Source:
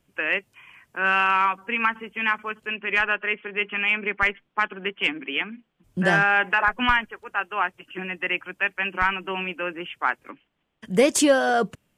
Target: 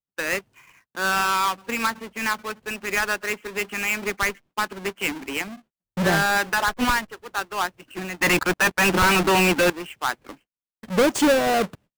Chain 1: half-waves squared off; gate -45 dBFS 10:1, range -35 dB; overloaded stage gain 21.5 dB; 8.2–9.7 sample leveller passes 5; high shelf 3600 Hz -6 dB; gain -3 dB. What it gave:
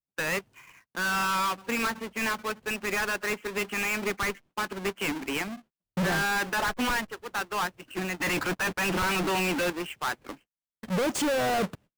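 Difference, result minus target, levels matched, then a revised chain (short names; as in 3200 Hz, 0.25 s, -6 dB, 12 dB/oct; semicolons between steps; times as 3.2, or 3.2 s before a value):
overloaded stage: distortion +15 dB
half-waves squared off; gate -45 dBFS 10:1, range -35 dB; overloaded stage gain 11 dB; 8.2–9.7 sample leveller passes 5; high shelf 3600 Hz -6 dB; gain -3 dB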